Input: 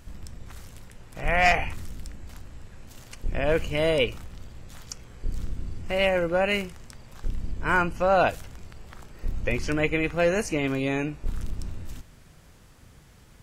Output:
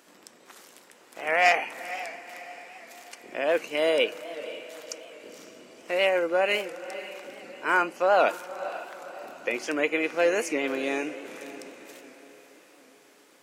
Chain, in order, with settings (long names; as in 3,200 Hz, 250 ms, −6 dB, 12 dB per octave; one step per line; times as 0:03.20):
high-pass filter 300 Hz 24 dB per octave
feedback delay with all-pass diffusion 513 ms, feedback 48%, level −13.5 dB
wow of a warped record 78 rpm, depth 100 cents